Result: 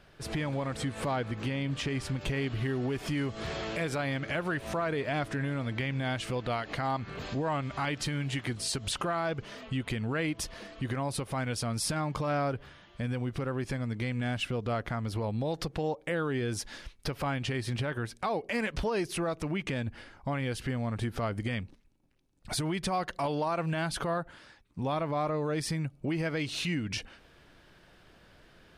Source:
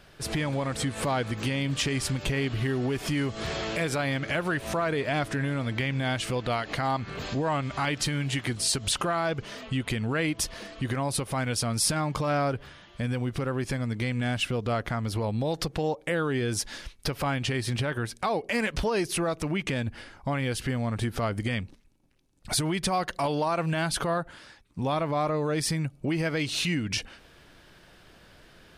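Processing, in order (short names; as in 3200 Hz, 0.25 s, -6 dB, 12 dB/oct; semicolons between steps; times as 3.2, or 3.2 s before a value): high shelf 4400 Hz -7 dB, from 1.16 s -12 dB, from 2.21 s -5.5 dB; gain -3.5 dB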